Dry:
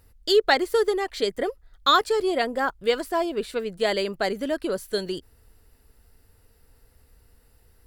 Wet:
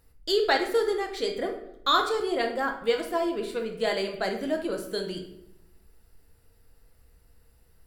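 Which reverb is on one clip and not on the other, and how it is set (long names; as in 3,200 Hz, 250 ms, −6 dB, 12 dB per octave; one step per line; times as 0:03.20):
rectangular room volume 210 cubic metres, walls mixed, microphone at 0.72 metres
level −5 dB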